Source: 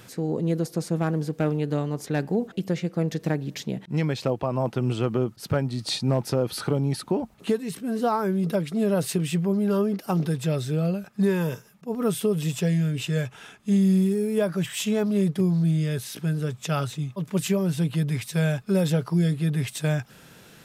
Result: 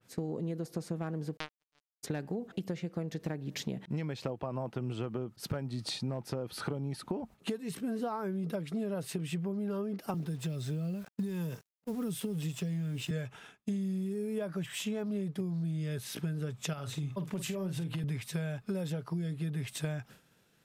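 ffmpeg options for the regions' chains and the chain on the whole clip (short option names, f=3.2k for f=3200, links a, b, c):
-filter_complex "[0:a]asettb=1/sr,asplit=3[a][b][c];[a]atrim=end=1.374[d];[b]atrim=start=1.37:end=2.03,asetpts=PTS-STARTPTS,afade=t=in:d=0.004:c=qsin,afade=t=out:st=0.656:d=0.004:c=qsin,lowpass=3.5k,tiltshelf=f=1.1k:g=-9,acrusher=bits=2:mix=0:aa=0.5[e];[c]atrim=start=2.026[f];[d][e]acrossfade=d=0.004:c1=hsin:c2=qsin[g];[g][f]acrossfade=d=0.004:c1=qsin:c2=hsin,asettb=1/sr,asplit=3[h][i][j];[h]atrim=end=10.144[k];[i]atrim=start=10.14:end=13.11,asetpts=PTS-STARTPTS,afade=t=in:d=0.004:c=qsin,afade=t=out:st=2.966:d=0.004:c=qsin,acrusher=bits=7:mix=0:aa=0.5,acrossover=split=300|3000[l][m][n];[m]acompressor=threshold=-38dB:ratio=6:attack=3.2:release=140:knee=2.83:detection=peak[o];[l][o][n]amix=inputs=3:normalize=0,aeval=exprs='sgn(val(0))*max(abs(val(0))-0.00316,0)':c=same[p];[j]atrim=start=13.106[q];[k][p]acrossfade=d=0.004:c1=hsin:c2=qsin[r];[r][q]acrossfade=d=0.004:c1=qsin:c2=hsin,asettb=1/sr,asplit=3[s][t][u];[s]atrim=end=16.734[v];[t]atrim=start=16.73:end=18.04,asetpts=PTS-STARTPTS,afade=t=in:d=0.004:c=qsin,afade=t=out:st=1.306:d=0.004:c=qsin,acompressor=threshold=-28dB:ratio=10:attack=3.2:release=140:knee=1:detection=peak,asplit=2[w][x];[x]adelay=48,volume=-10.5dB[y];[w][y]amix=inputs=2:normalize=0,atrim=end_sample=57771[z];[u]atrim=start=18.036[aa];[v][z]acrossfade=d=0.004:c1=hsin:c2=qsin[ab];[ab][aa]acrossfade=d=0.004:c1=qsin:c2=hsin,agate=range=-33dB:threshold=-37dB:ratio=3:detection=peak,acompressor=threshold=-32dB:ratio=10,adynamicequalizer=threshold=0.00158:dfrequency=3500:dqfactor=0.7:tfrequency=3500:tqfactor=0.7:attack=5:release=100:ratio=0.375:range=2.5:mode=cutabove:tftype=highshelf"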